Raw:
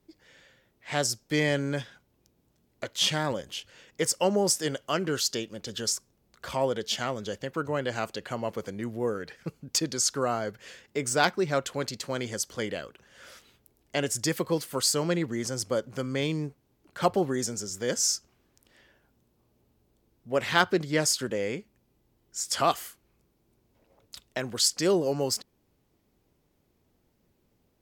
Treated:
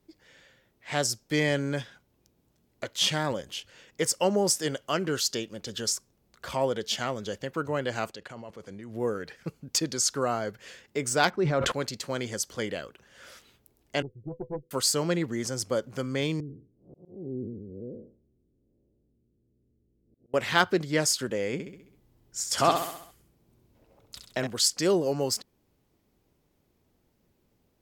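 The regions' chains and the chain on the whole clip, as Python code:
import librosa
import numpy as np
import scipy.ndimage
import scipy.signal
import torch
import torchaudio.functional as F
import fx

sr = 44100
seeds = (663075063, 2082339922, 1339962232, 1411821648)

y = fx.chain(x, sr, fx.lowpass(hz=10000.0, slope=12),
    fx.level_steps(step_db=14), at=(8.11, 8.95))
y = fx.chain(y, sr, fx.lowpass(hz=1600.0, slope=6),
    fx.sustainer(db_per_s=31.0), at=(11.3, 11.72))
y = fx.chain(y, sr, fx.cheby_ripple(hz=520.0, ripple_db=9),
    fx.tube_stage(drive_db=24.0, bias=0.7), at=(14.02, 14.71))
y = fx.chain(y, sr, fx.spec_blur(span_ms=213.0),
    fx.cheby2_lowpass(hz=2500.0, order=4, stop_db=80),
    fx.auto_swell(attack_ms=363.0), at=(16.4, 20.34))
y = fx.chain(y, sr, fx.low_shelf(hz=500.0, db=4.0),
    fx.echo_feedback(ms=66, feedback_pct=52, wet_db=-6.5), at=(21.53, 24.47))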